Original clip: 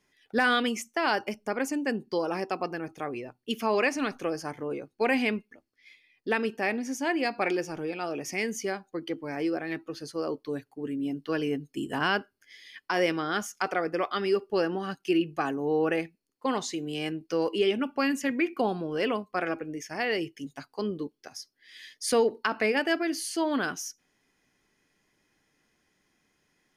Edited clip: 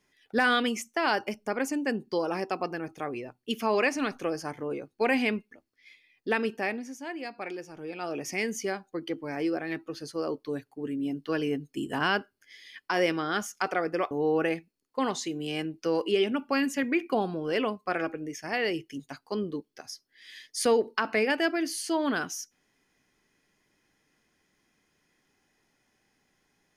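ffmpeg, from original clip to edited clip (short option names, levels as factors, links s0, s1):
-filter_complex "[0:a]asplit=4[s0][s1][s2][s3];[s0]atrim=end=6.95,asetpts=PTS-STARTPTS,afade=t=out:st=6.53:d=0.42:silence=0.334965[s4];[s1]atrim=start=6.95:end=7.74,asetpts=PTS-STARTPTS,volume=0.335[s5];[s2]atrim=start=7.74:end=14.112,asetpts=PTS-STARTPTS,afade=t=in:d=0.42:silence=0.334965[s6];[s3]atrim=start=15.578[s7];[s4][s5][s6]concat=n=3:v=0:a=1[s8];[s8][s7]acrossfade=d=0.004:c1=hsin:c2=hsin"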